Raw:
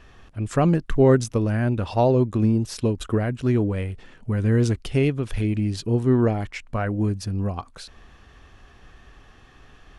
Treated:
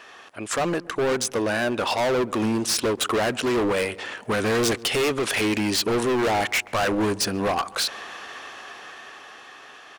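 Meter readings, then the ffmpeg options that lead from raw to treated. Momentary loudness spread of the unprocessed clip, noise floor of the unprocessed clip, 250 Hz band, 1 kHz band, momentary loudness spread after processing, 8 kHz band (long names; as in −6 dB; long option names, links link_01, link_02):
11 LU, −52 dBFS, −3.5 dB, +5.0 dB, 17 LU, +12.0 dB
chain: -filter_complex "[0:a]highpass=560,asplit=2[link_01][link_02];[link_02]alimiter=limit=-22dB:level=0:latency=1,volume=2dB[link_03];[link_01][link_03]amix=inputs=2:normalize=0,dynaudnorm=framelen=340:gausssize=11:maxgain=11.5dB,volume=23dB,asoftclip=hard,volume=-23dB,asplit=2[link_04][link_05];[link_05]adelay=135,lowpass=frequency=1200:poles=1,volume=-19dB,asplit=2[link_06][link_07];[link_07]adelay=135,lowpass=frequency=1200:poles=1,volume=0.46,asplit=2[link_08][link_09];[link_09]adelay=135,lowpass=frequency=1200:poles=1,volume=0.46,asplit=2[link_10][link_11];[link_11]adelay=135,lowpass=frequency=1200:poles=1,volume=0.46[link_12];[link_04][link_06][link_08][link_10][link_12]amix=inputs=5:normalize=0,volume=3dB"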